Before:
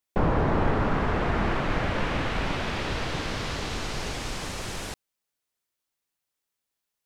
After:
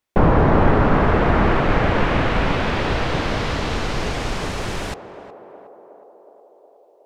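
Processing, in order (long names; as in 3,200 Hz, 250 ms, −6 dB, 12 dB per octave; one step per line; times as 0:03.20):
high-shelf EQ 4,400 Hz −10.5 dB
feedback echo with a band-pass in the loop 366 ms, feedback 76%, band-pass 560 Hz, level −9.5 dB
level +9 dB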